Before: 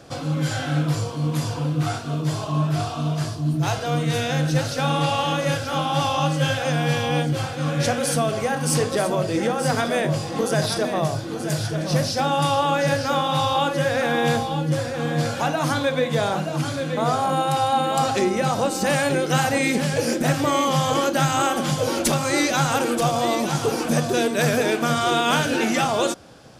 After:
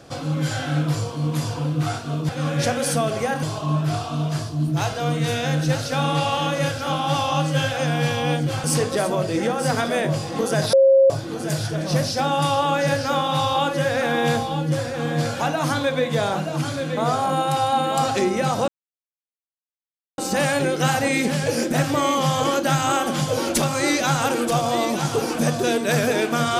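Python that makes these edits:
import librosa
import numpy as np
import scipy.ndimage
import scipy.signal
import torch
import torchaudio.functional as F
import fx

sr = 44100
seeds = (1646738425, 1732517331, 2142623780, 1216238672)

y = fx.edit(x, sr, fx.move(start_s=7.5, length_s=1.14, to_s=2.29),
    fx.bleep(start_s=10.73, length_s=0.37, hz=539.0, db=-10.0),
    fx.insert_silence(at_s=18.68, length_s=1.5), tone=tone)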